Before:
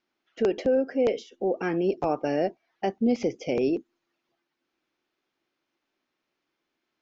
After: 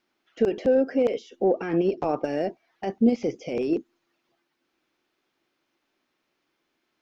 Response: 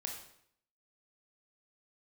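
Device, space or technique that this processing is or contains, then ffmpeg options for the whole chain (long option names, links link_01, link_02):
de-esser from a sidechain: -filter_complex "[0:a]asplit=2[link_01][link_02];[link_02]highpass=4300,apad=whole_len=309224[link_03];[link_01][link_03]sidechaincompress=threshold=-57dB:ratio=3:attack=2:release=23,asettb=1/sr,asplit=3[link_04][link_05][link_06];[link_04]atrim=end=1.444[link_07];[link_05]atrim=start=1.44:end=2.24,asetpts=PTS-STARTPTS,afade=type=in:duration=0.004:curve=qsin,afade=type=out:start_time=0.796:duration=0.004:curve=qsin,lowpass=6000[link_08];[link_06]atrim=start=2.236[link_09];[link_07][link_08]acrossfade=duration=0.004:curve1=hsin:curve2=qsin[link_10];[link_10][link_09]acrossfade=duration=0.004:curve1=qsin:curve2=hsin,volume=5dB"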